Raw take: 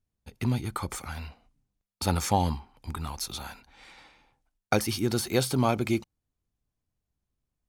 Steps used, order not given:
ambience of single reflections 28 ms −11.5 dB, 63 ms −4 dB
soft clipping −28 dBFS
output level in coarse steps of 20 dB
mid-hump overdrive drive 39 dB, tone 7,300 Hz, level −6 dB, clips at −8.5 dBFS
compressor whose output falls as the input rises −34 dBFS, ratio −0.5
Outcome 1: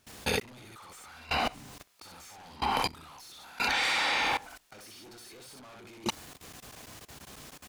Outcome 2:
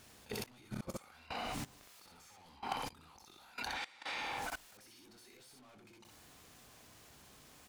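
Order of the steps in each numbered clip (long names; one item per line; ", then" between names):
soft clipping, then ambience of single reflections, then mid-hump overdrive, then output level in coarse steps, then compressor whose output falls as the input rises
mid-hump overdrive, then compressor whose output falls as the input rises, then ambience of single reflections, then output level in coarse steps, then soft clipping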